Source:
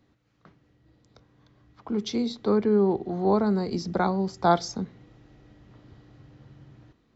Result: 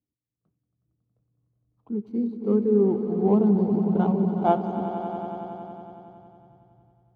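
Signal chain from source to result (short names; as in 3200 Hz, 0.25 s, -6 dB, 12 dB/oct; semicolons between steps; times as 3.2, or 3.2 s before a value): median filter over 25 samples; swelling echo 92 ms, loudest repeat 5, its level -9.5 dB; spectral expander 1.5:1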